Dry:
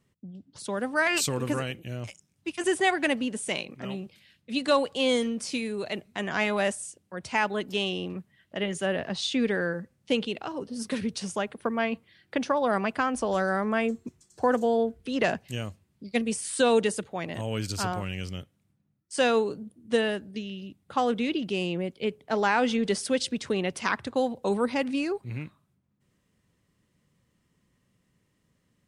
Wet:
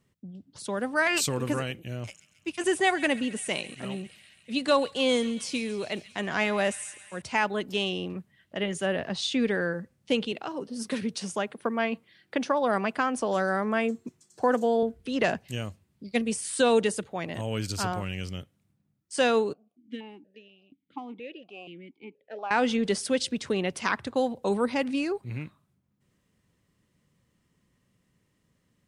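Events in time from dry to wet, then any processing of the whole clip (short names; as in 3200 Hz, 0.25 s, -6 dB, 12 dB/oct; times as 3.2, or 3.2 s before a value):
1.79–7.22 thin delay 0.136 s, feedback 72%, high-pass 2000 Hz, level -15 dB
10.32–14.83 HPF 140 Hz
19.53–22.51 vowel sequencer 4.2 Hz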